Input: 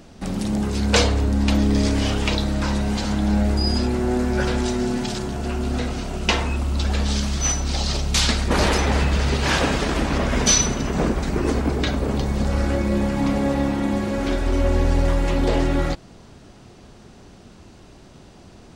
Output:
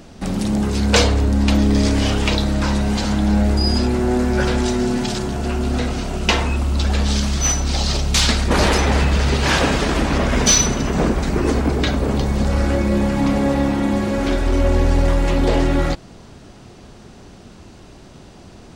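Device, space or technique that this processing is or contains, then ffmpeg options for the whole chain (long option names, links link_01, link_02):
parallel distortion: -filter_complex "[0:a]asplit=2[link_01][link_02];[link_02]asoftclip=type=hard:threshold=-21dB,volume=-11.5dB[link_03];[link_01][link_03]amix=inputs=2:normalize=0,volume=2dB"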